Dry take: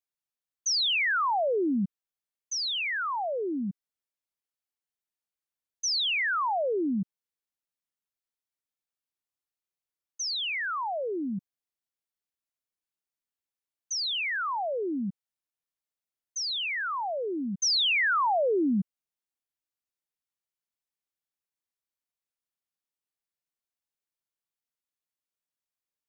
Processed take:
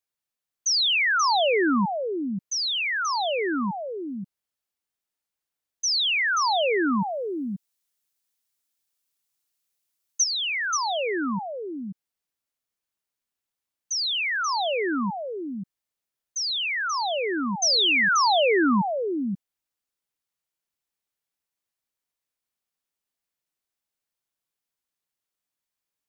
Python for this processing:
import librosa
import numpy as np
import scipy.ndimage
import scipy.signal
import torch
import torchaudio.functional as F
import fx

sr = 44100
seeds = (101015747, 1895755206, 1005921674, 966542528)

y = fx.high_shelf(x, sr, hz=3100.0, db=10.5, at=(7.0, 10.24))
y = y + 10.0 ** (-6.0 / 20.0) * np.pad(y, (int(533 * sr / 1000.0), 0))[:len(y)]
y = y * librosa.db_to_amplitude(4.0)